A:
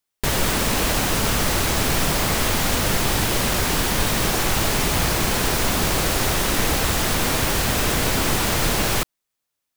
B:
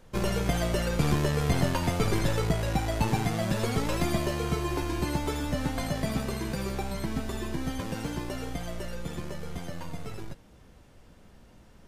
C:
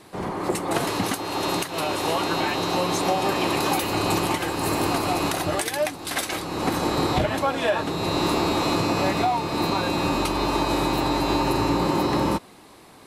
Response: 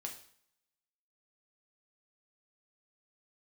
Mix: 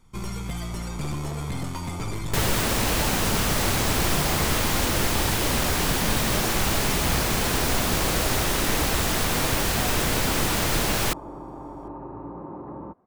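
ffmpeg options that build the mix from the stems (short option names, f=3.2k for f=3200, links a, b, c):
-filter_complex "[0:a]adelay=2100,volume=-3dB[a];[1:a]aecho=1:1:0.9:0.74,asoftclip=type=hard:threshold=-19.5dB,equalizer=f=7.9k:t=o:w=0.77:g=6,volume=-6.5dB[b];[2:a]lowpass=f=1.2k:w=0.5412,lowpass=f=1.2k:w=1.3066,adelay=550,volume=-15dB[c];[a][b][c]amix=inputs=3:normalize=0"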